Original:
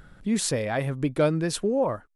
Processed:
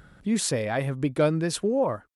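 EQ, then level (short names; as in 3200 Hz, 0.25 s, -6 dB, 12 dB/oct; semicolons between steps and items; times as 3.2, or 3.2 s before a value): HPF 46 Hz; 0.0 dB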